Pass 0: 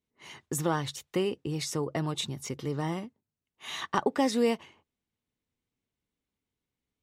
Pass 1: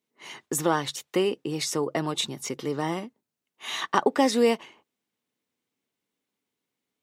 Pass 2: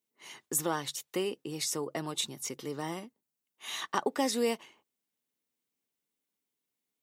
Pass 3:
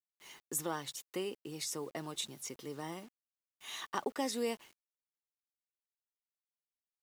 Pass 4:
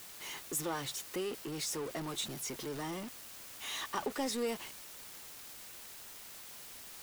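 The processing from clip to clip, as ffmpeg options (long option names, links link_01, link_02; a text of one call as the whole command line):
ffmpeg -i in.wav -af "highpass=230,volume=5.5dB" out.wav
ffmpeg -i in.wav -af "crystalizer=i=1.5:c=0,volume=-8.5dB" out.wav
ffmpeg -i in.wav -af "acrusher=bits=8:mix=0:aa=0.000001,volume=-6dB" out.wav
ffmpeg -i in.wav -af "aeval=exprs='val(0)+0.5*0.0168*sgn(val(0))':channel_layout=same,volume=-2.5dB" out.wav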